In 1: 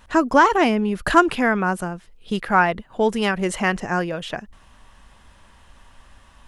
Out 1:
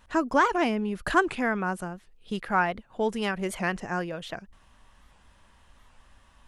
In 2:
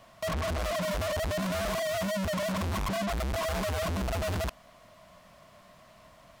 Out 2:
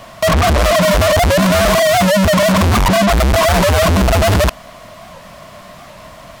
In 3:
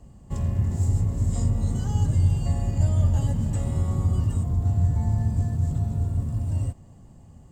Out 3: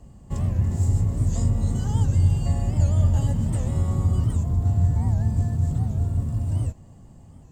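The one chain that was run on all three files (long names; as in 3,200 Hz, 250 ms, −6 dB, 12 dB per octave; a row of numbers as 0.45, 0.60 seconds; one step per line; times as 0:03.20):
wow of a warped record 78 rpm, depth 160 cents
normalise the peak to −9 dBFS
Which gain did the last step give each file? −7.5, +19.0, +1.5 decibels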